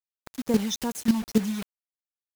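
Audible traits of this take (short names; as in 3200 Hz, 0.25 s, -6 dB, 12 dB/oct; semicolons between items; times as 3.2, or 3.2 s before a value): phasing stages 12, 2.4 Hz, lowest notch 470–3800 Hz; a quantiser's noise floor 6-bit, dither none; chopped level 3.7 Hz, depth 65%, duty 10%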